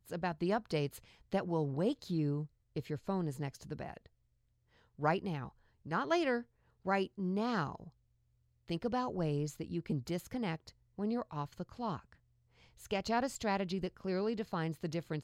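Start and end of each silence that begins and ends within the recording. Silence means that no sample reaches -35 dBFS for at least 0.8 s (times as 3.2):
3.97–5.02
7.75–8.7
11.97–12.91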